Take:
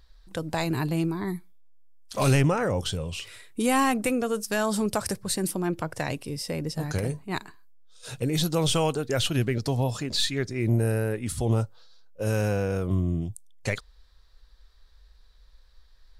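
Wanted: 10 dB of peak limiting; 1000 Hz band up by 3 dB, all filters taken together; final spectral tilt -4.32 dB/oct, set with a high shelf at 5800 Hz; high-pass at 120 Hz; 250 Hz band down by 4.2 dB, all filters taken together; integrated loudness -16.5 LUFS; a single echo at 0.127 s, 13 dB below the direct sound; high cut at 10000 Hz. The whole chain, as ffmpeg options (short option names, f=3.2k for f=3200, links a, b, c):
-af "highpass=120,lowpass=10k,equalizer=f=250:t=o:g=-5.5,equalizer=f=1k:t=o:g=4,highshelf=f=5.8k:g=3.5,alimiter=limit=-20dB:level=0:latency=1,aecho=1:1:127:0.224,volume=15dB"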